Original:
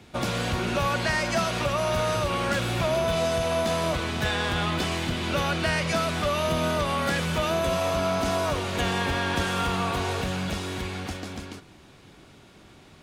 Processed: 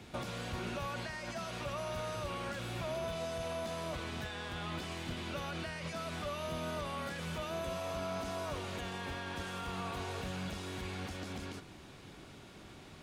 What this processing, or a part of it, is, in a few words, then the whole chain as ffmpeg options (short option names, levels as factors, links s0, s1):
de-esser from a sidechain: -filter_complex "[0:a]asplit=2[s0][s1];[s1]highpass=f=6300:p=1,apad=whole_len=574489[s2];[s0][s2]sidechaincompress=threshold=0.00355:ratio=4:attack=0.97:release=71,volume=0.841"